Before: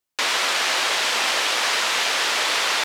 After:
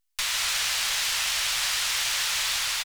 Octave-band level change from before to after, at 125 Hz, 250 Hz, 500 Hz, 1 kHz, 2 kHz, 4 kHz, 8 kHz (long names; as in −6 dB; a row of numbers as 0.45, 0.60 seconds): can't be measured, below −15 dB, −18.0 dB, −11.5 dB, −7.0 dB, −4.0 dB, −0.5 dB